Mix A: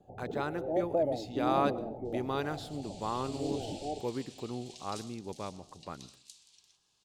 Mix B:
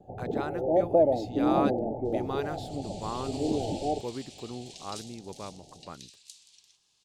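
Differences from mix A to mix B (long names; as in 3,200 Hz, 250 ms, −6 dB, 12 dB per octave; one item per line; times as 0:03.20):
first sound +8.5 dB
second sound +4.5 dB
reverb: off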